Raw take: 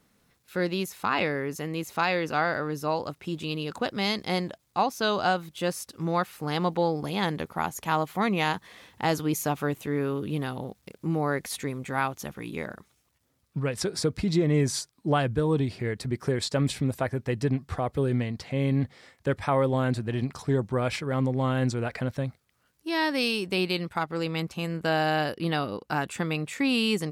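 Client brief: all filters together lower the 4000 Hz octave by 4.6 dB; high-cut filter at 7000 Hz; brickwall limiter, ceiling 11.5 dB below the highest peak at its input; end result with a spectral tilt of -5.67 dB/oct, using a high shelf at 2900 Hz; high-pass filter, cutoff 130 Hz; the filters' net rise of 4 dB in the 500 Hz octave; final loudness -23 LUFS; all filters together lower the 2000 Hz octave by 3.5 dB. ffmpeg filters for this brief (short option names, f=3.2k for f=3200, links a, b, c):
-af "highpass=130,lowpass=7k,equalizer=f=500:t=o:g=5,equalizer=f=2k:t=o:g=-5,highshelf=f=2.9k:g=4.5,equalizer=f=4k:t=o:g=-7.5,volume=9dB,alimiter=limit=-11.5dB:level=0:latency=1"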